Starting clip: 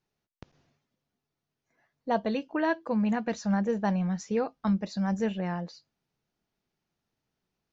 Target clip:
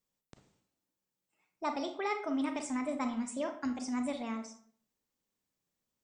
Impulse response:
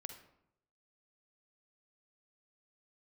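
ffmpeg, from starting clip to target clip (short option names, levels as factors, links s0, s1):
-filter_complex "[0:a]asetrate=56448,aresample=44100,aemphasis=mode=production:type=50kf[s0];[1:a]atrim=start_sample=2205,asetrate=61740,aresample=44100[s1];[s0][s1]afir=irnorm=-1:irlink=0"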